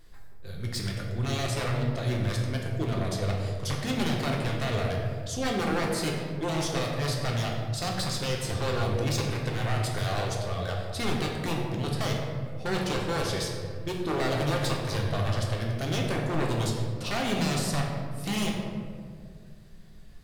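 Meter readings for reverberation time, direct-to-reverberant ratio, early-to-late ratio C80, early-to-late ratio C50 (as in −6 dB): 2.1 s, −1.5 dB, 3.5 dB, 2.0 dB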